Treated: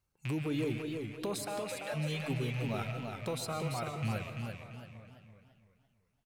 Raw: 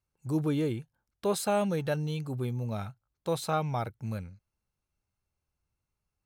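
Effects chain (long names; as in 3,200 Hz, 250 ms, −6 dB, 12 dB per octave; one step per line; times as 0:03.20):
loose part that buzzes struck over −44 dBFS, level −32 dBFS
reverb reduction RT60 1.1 s
in parallel at +2.5 dB: downward compressor, threshold −37 dBFS, peak gain reduction 13.5 dB
on the sum: brickwall limiter −23.5 dBFS, peak gain reduction 9 dB
0:01.36–0:01.94: Chebyshev high-pass with heavy ripple 520 Hz, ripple 3 dB
0:03.33–0:03.96: notch comb filter 860 Hz
slap from a distant wall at 150 metres, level −18 dB
on a send at −9 dB: convolution reverb RT60 0.60 s, pre-delay 90 ms
on the sum: feedback echo with a swinging delay time 338 ms, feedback 37%, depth 100 cents, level −5 dB
level −4 dB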